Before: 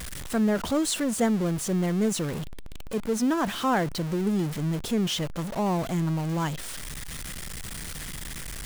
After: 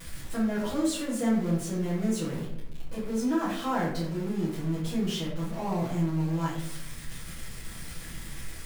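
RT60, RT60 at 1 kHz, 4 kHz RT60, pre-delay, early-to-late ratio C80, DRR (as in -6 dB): 0.80 s, 0.65 s, 0.45 s, 6 ms, 7.0 dB, -8.5 dB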